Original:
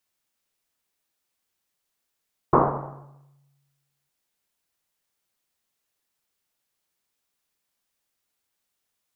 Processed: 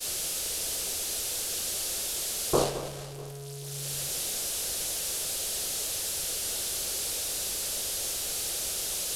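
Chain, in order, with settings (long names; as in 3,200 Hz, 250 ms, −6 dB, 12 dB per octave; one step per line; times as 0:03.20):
linear delta modulator 64 kbit/s, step −18.5 dBFS
graphic EQ with 10 bands 125 Hz −5 dB, 250 Hz −9 dB, 500 Hz +4 dB, 1,000 Hz −12 dB, 2,000 Hz −9 dB
downward expander −23 dBFS
on a send: delay that swaps between a low-pass and a high-pass 216 ms, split 1,400 Hz, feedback 56%, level −13 dB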